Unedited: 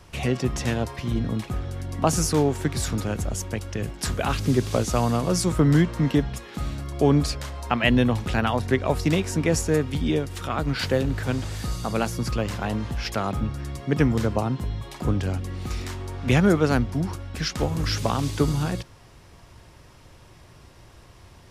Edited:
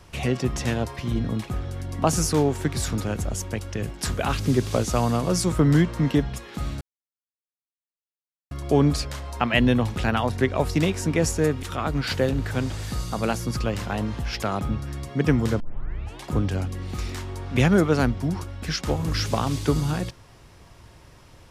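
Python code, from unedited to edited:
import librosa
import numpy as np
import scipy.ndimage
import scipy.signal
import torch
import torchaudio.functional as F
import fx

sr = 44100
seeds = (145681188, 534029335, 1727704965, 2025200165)

y = fx.edit(x, sr, fx.insert_silence(at_s=6.81, length_s=1.7),
    fx.cut(start_s=9.93, length_s=0.42),
    fx.tape_start(start_s=14.32, length_s=0.64), tone=tone)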